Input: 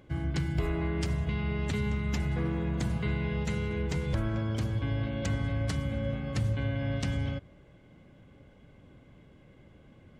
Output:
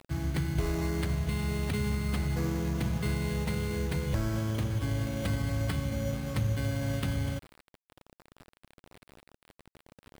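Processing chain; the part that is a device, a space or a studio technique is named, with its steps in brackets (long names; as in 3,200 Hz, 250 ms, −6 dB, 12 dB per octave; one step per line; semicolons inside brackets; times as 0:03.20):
early 8-bit sampler (sample-rate reduction 6,400 Hz, jitter 0%; bit reduction 8 bits)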